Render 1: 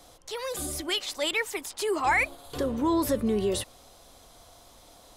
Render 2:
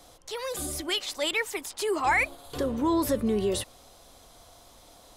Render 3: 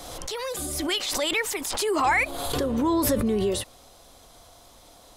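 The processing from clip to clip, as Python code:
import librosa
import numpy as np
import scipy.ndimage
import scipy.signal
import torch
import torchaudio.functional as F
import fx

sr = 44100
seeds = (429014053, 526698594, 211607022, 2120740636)

y1 = x
y2 = fx.pre_swell(y1, sr, db_per_s=33.0)
y2 = y2 * librosa.db_to_amplitude(1.5)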